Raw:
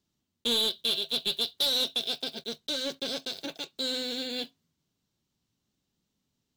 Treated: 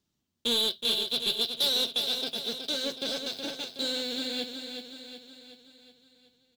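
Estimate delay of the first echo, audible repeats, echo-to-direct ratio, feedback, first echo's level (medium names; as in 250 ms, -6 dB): 371 ms, 6, -5.5 dB, 53%, -7.0 dB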